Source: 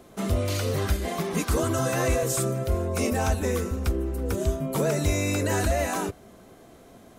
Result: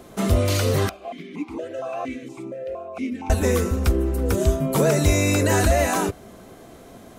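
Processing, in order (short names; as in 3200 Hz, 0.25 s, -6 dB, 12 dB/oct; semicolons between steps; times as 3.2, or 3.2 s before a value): 0.89–3.3 vowel sequencer 4.3 Hz; gain +6 dB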